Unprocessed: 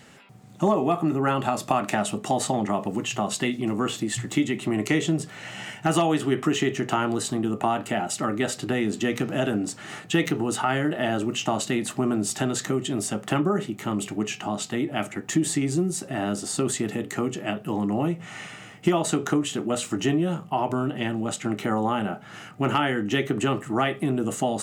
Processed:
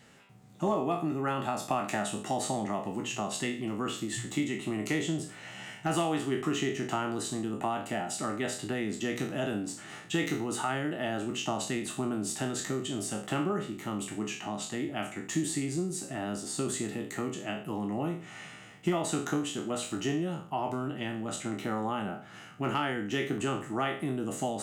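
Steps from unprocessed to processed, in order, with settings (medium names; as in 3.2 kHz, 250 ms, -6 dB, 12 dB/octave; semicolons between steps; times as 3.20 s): spectral sustain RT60 0.45 s; trim -8.5 dB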